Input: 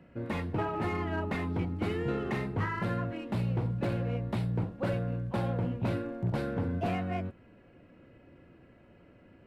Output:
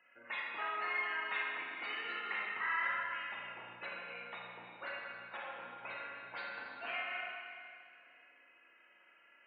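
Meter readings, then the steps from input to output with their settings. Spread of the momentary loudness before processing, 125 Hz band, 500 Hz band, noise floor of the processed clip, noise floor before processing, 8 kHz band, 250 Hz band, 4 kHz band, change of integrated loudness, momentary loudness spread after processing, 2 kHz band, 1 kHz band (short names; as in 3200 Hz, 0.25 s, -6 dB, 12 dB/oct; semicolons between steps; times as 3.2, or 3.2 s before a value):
2 LU, -38.5 dB, -15.5 dB, -66 dBFS, -58 dBFS, n/a, -28.0 dB, +2.0 dB, -7.0 dB, 12 LU, +4.5 dB, -3.5 dB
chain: spectral gate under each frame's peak -30 dB strong; Butterworth band-pass 3800 Hz, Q 0.54; Schroeder reverb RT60 2.3 s, combs from 26 ms, DRR -2.5 dB; gain +2 dB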